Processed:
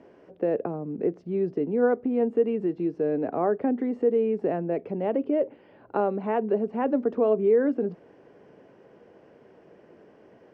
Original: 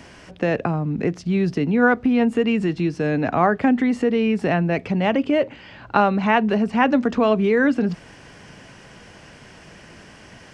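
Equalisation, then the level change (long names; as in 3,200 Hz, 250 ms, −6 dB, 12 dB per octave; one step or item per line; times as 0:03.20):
resonant band-pass 430 Hz, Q 2.2
0.0 dB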